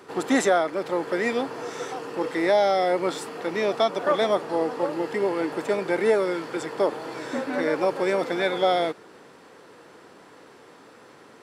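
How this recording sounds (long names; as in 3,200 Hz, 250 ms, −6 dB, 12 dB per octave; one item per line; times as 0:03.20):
background noise floor −50 dBFS
spectral slope −3.0 dB per octave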